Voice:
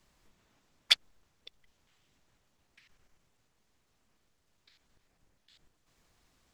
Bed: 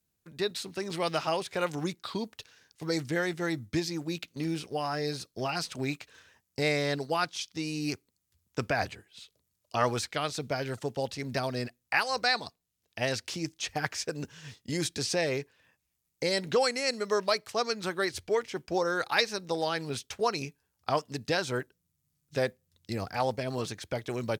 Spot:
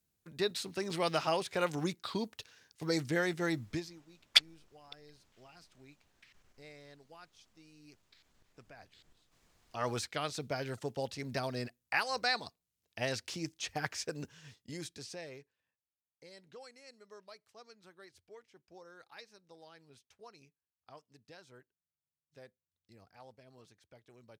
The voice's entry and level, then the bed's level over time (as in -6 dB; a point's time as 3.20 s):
3.45 s, +0.5 dB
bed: 3.68 s -2 dB
4.05 s -26 dB
9.48 s -26 dB
9.91 s -5 dB
14.16 s -5 dB
15.98 s -26 dB